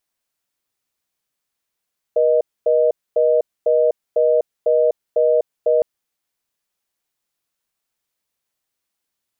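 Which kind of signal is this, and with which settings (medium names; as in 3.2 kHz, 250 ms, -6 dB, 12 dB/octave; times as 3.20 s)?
call progress tone reorder tone, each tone -15 dBFS 3.66 s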